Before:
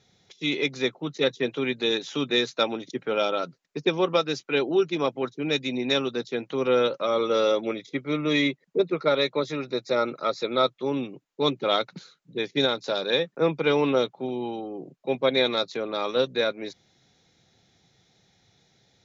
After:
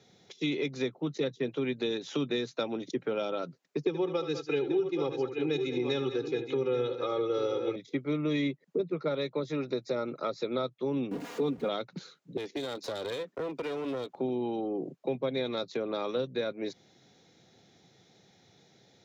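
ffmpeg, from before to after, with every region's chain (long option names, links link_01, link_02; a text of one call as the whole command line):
ffmpeg -i in.wav -filter_complex "[0:a]asettb=1/sr,asplit=3[link_01][link_02][link_03];[link_01]atrim=end=3.834[link_04];[link_02]atrim=start=3.83:end=7.76,asetpts=PTS-STARTPTS,afade=type=in:duration=0.004:curve=qsin,afade=type=out:start_time=3.926:duration=0.004:curve=qsin,aecho=1:1:2.4:0.93,atrim=end_sample=173313,aecho=1:1:73|199|830:0.237|0.168|0.299,atrim=end_sample=173313[link_05];[link_03]atrim=start=7.756[link_06];[link_04][link_05]acrossfade=duration=0.004:curve1=hsin:curve2=qsin[link_07];[link_07][link_06]acrossfade=duration=0.004:curve1=qsin:curve2=hsin,asettb=1/sr,asplit=3[link_08][link_09][link_10];[link_08]atrim=end=11.114[link_11];[link_09]atrim=start=11.11:end=11.69,asetpts=PTS-STARTPTS,afade=type=in:duration=0.004:curve=qsin,afade=type=out:start_time=0.576:duration=0.004:curve=qsin,aeval=exprs='val(0)+0.5*0.0141*sgn(val(0))':channel_layout=same,highshelf=frequency=3900:gain=-10.5,aecho=1:1:4.2:0.74,atrim=end_sample=25578[link_12];[link_10]atrim=start=11.686[link_13];[link_11][link_12]acrossfade=duration=0.004:curve1=hsin:curve2=qsin[link_14];[link_14][link_13]acrossfade=duration=0.004:curve1=qsin:curve2=hsin,asettb=1/sr,asplit=3[link_15][link_16][link_17];[link_15]atrim=end=12.374[link_18];[link_16]atrim=start=12.37:end=14.16,asetpts=PTS-STARTPTS,afade=type=in:duration=0.004:curve=qsin,afade=type=out:start_time=1.786:duration=0.004:curve=qsin,highpass=frequency=220:width=0.5412,highpass=frequency=220:width=1.3066,acompressor=threshold=-32dB:ratio=6:attack=3.2:release=140:knee=1:detection=peak,aeval=exprs='clip(val(0),-1,0.00841)':channel_layout=same[link_19];[link_17]atrim=start=14.156[link_20];[link_18][link_19]acrossfade=duration=0.004:curve1=hsin:curve2=qsin[link_21];[link_21][link_20]acrossfade=duration=0.004:curve1=qsin:curve2=hsin,highpass=100,equalizer=frequency=370:width_type=o:width=2.2:gain=6,acrossover=split=160[link_22][link_23];[link_23]acompressor=threshold=-30dB:ratio=6[link_24];[link_22][link_24]amix=inputs=2:normalize=0" out.wav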